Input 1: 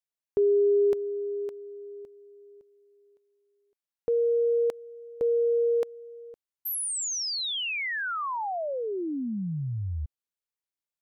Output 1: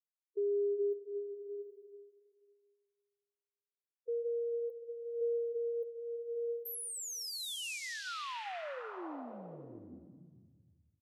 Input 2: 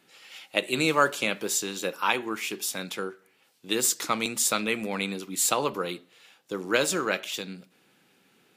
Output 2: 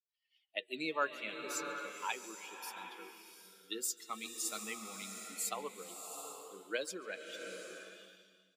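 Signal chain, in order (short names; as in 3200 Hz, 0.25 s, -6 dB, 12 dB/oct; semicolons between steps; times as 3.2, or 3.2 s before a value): per-bin expansion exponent 2; outdoor echo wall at 24 m, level -22 dB; flange 0.41 Hz, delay 0.3 ms, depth 5.4 ms, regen -81%; HPF 290 Hz 12 dB/oct; bloom reverb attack 0.76 s, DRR 5 dB; gain -5.5 dB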